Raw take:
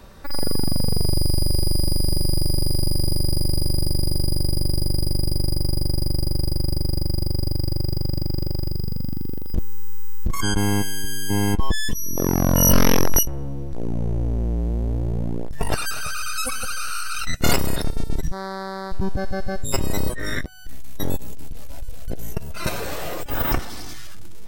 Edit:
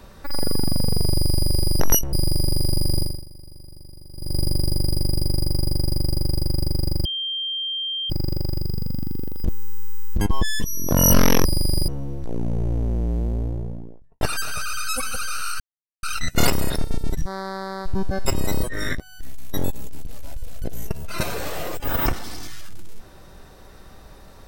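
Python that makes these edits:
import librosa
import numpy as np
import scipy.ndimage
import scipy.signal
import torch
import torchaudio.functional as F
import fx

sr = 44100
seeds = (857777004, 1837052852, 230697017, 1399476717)

y = fx.studio_fade_out(x, sr, start_s=14.64, length_s=1.06)
y = fx.edit(y, sr, fx.swap(start_s=1.8, length_s=0.43, other_s=13.04, other_length_s=0.33),
    fx.fade_down_up(start_s=3.1, length_s=1.38, db=-21.5, fade_s=0.3, curve='qua'),
    fx.bleep(start_s=7.15, length_s=1.05, hz=3170.0, db=-24.0),
    fx.cut(start_s=10.31, length_s=1.19),
    fx.cut(start_s=12.21, length_s=0.3),
    fx.insert_silence(at_s=17.09, length_s=0.43),
    fx.cut(start_s=19.32, length_s=0.4), tone=tone)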